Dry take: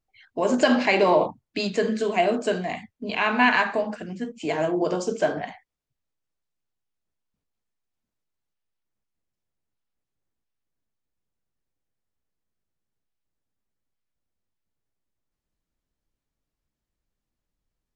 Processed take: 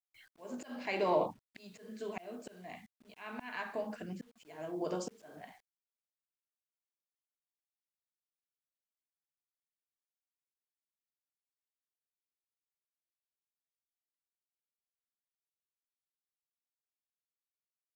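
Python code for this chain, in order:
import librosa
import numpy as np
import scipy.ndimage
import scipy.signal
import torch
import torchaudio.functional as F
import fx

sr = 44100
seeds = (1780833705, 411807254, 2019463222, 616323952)

y = fx.auto_swell(x, sr, attack_ms=741.0)
y = fx.quant_dither(y, sr, seeds[0], bits=10, dither='none')
y = y * 10.0 ** (-7.5 / 20.0)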